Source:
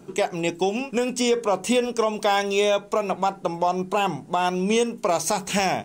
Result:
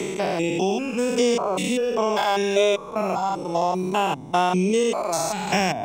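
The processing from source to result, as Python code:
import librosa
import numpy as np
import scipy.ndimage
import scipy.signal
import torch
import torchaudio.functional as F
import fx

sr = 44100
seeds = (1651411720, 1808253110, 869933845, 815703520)

y = fx.spec_steps(x, sr, hold_ms=200)
y = fx.dereverb_blind(y, sr, rt60_s=1.5)
y = fx.band_squash(y, sr, depth_pct=40)
y = y * 10.0 ** (6.0 / 20.0)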